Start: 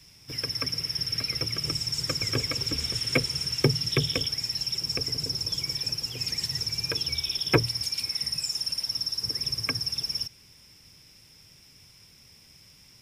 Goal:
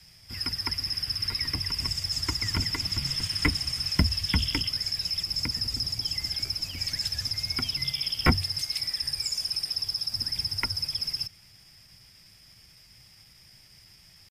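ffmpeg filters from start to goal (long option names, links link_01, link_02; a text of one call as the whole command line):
ffmpeg -i in.wav -af "atempo=0.91,afreqshift=-210" out.wav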